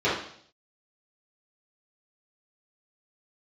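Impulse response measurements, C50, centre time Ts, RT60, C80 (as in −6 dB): 3.0 dB, 45 ms, 0.60 s, 7.5 dB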